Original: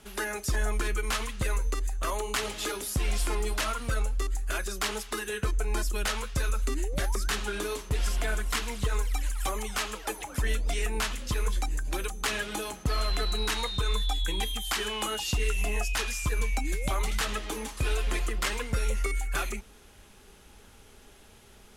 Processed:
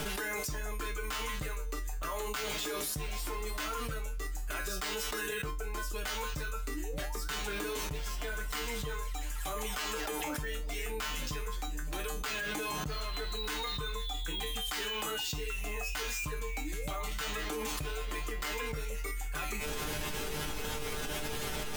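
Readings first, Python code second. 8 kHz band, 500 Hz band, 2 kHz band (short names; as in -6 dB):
-4.5 dB, -4.0 dB, -3.5 dB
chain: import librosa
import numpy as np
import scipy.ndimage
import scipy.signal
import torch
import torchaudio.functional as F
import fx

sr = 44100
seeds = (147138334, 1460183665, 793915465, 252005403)

y = fx.comb_fb(x, sr, f0_hz=150.0, decay_s=0.26, harmonics='all', damping=0.0, mix_pct=90)
y = np.repeat(scipy.signal.resample_poly(y, 1, 2), 2)[:len(y)]
y = fx.env_flatten(y, sr, amount_pct=100)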